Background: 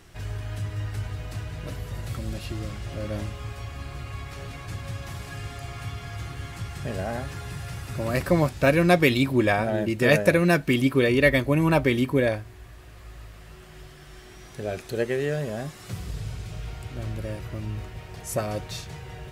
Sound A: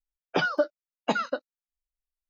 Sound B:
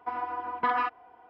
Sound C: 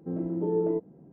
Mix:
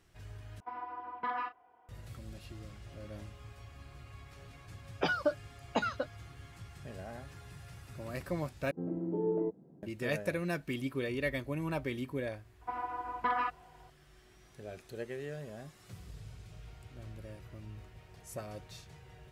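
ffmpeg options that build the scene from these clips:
ffmpeg -i bed.wav -i cue0.wav -i cue1.wav -i cue2.wav -filter_complex "[2:a]asplit=2[link_01][link_02];[0:a]volume=-15dB[link_03];[link_01]asplit=2[link_04][link_05];[link_05]adelay=34,volume=-11.5dB[link_06];[link_04][link_06]amix=inputs=2:normalize=0[link_07];[3:a]highpass=58[link_08];[link_03]asplit=3[link_09][link_10][link_11];[link_09]atrim=end=0.604[link_12];[link_07]atrim=end=1.29,asetpts=PTS-STARTPTS,volume=-10dB[link_13];[link_10]atrim=start=1.886:end=8.714[link_14];[link_08]atrim=end=1.12,asetpts=PTS-STARTPTS,volume=-5.5dB[link_15];[link_11]atrim=start=9.826[link_16];[1:a]atrim=end=2.29,asetpts=PTS-STARTPTS,volume=-6dB,afade=type=in:duration=0.004:curve=hsin,afade=type=out:start_time=2.286:duration=0.004:curve=hsin,adelay=4670[link_17];[link_02]atrim=end=1.29,asetpts=PTS-STARTPTS,volume=-5dB,afade=type=in:duration=0.004:curve=hsin,afade=type=out:start_time=1.286:duration=0.004:curve=hsin,adelay=12610[link_18];[link_12][link_13]acrossfade=duration=0.004:curve1=hsin:curve2=hsin[link_19];[link_19][link_14]acrossfade=duration=0.004:curve1=hsin:curve2=hsin[link_20];[link_20][link_15]acrossfade=duration=0.004:curve1=hsin:curve2=hsin[link_21];[link_21][link_16]acrossfade=duration=0.004:curve1=hsin:curve2=hsin[link_22];[link_22][link_17][link_18]amix=inputs=3:normalize=0" out.wav

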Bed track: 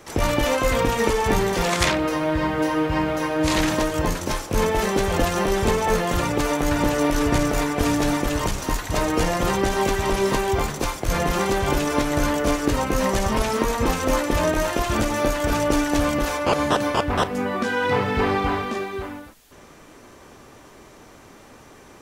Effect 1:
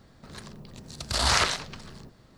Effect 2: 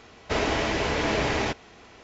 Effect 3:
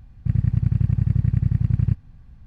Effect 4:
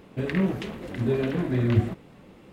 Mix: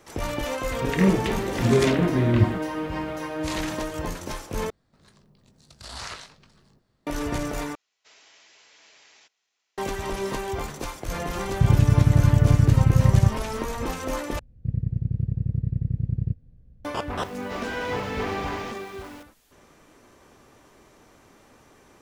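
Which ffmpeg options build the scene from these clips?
ffmpeg -i bed.wav -i cue0.wav -i cue1.wav -i cue2.wav -i cue3.wav -filter_complex "[2:a]asplit=2[link_01][link_02];[3:a]asplit=2[link_03][link_04];[0:a]volume=-8dB[link_05];[4:a]dynaudnorm=framelen=200:gausssize=3:maxgain=11.5dB[link_06];[1:a]asplit=2[link_07][link_08];[link_08]adelay=20,volume=-9.5dB[link_09];[link_07][link_09]amix=inputs=2:normalize=0[link_10];[link_01]aderivative[link_11];[link_03]alimiter=level_in=14.5dB:limit=-1dB:release=50:level=0:latency=1[link_12];[link_04]lowshelf=frequency=700:width_type=q:width=3:gain=10[link_13];[link_02]aeval=exprs='val(0)+0.5*0.0251*sgn(val(0))':channel_layout=same[link_14];[link_05]asplit=4[link_15][link_16][link_17][link_18];[link_15]atrim=end=4.704[link_19];[link_10]atrim=end=2.37,asetpts=PTS-STARTPTS,volume=-14.5dB[link_20];[link_16]atrim=start=7.066:end=7.754[link_21];[link_11]atrim=end=2.03,asetpts=PTS-STARTPTS,volume=-16dB[link_22];[link_17]atrim=start=9.776:end=14.394[link_23];[link_13]atrim=end=2.46,asetpts=PTS-STARTPTS,volume=-16.5dB[link_24];[link_18]atrim=start=16.846[link_25];[link_06]atrim=end=2.52,asetpts=PTS-STARTPTS,volume=-5dB,afade=type=in:duration=0.004:curve=hsin,afade=type=out:start_time=2.516:duration=0.004:curve=hsin,adelay=640[link_26];[link_12]atrim=end=2.46,asetpts=PTS-STARTPTS,volume=-7dB,afade=type=in:duration=0.004:curve=hsin,afade=type=out:start_time=2.456:duration=0.004:curve=hsin,adelay=11350[link_27];[link_14]atrim=end=2.03,asetpts=PTS-STARTPTS,volume=-12.5dB,afade=type=in:duration=0.004:curve=hsin,afade=type=out:start_time=2.026:duration=0.004:curve=hsin,adelay=17200[link_28];[link_19][link_20]acrossfade=duration=0.004:curve1=hsin:curve2=hsin[link_29];[link_29][link_21]acrossfade=duration=0.004:curve1=hsin:curve2=hsin[link_30];[link_30][link_22]acrossfade=duration=0.004:curve1=hsin:curve2=hsin[link_31];[link_31][link_23]acrossfade=duration=0.004:curve1=hsin:curve2=hsin[link_32];[link_32][link_24]acrossfade=duration=0.004:curve1=hsin:curve2=hsin[link_33];[link_33][link_25]acrossfade=duration=0.004:curve1=hsin:curve2=hsin[link_34];[link_34][link_26][link_27][link_28]amix=inputs=4:normalize=0" out.wav

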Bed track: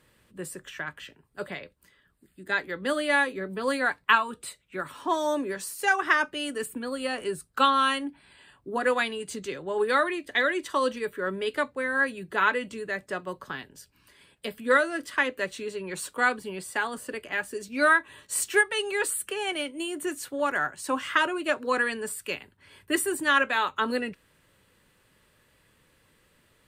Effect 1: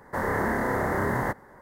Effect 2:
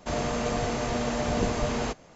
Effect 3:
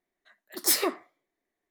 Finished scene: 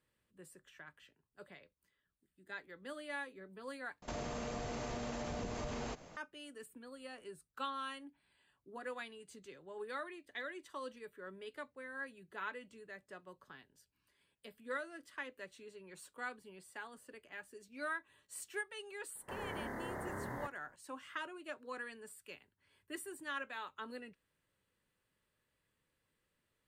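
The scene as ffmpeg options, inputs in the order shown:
ffmpeg -i bed.wav -i cue0.wav -i cue1.wav -filter_complex "[0:a]volume=-19.5dB[link_01];[2:a]acompressor=threshold=-35dB:ratio=6:attack=3.2:release=140:knee=1:detection=peak[link_02];[link_01]asplit=2[link_03][link_04];[link_03]atrim=end=4.024[link_05];[link_02]atrim=end=2.15,asetpts=PTS-STARTPTS,volume=-3dB[link_06];[link_04]atrim=start=6.166[link_07];[1:a]atrim=end=1.61,asetpts=PTS-STARTPTS,volume=-17dB,afade=type=in:duration=0.004:curve=hsin,afade=type=out:start_time=1.606:duration=0.004:curve=hsin,adelay=19150[link_08];[link_05][link_06]acrossfade=duration=0.004:curve1=hsin:curve2=hsin[link_09];[link_09][link_07]acrossfade=duration=0.004:curve1=hsin:curve2=hsin[link_10];[link_10][link_08]amix=inputs=2:normalize=0" out.wav

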